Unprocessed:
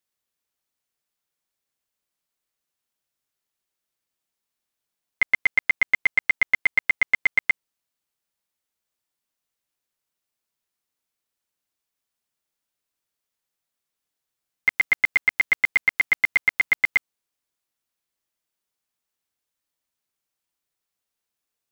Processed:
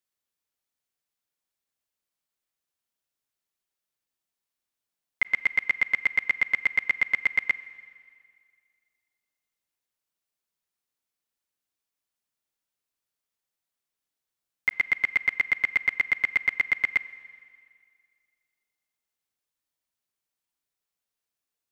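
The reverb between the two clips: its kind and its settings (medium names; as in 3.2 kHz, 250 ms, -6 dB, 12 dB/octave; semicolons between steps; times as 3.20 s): Schroeder reverb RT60 2.1 s, combs from 32 ms, DRR 17 dB; trim -4 dB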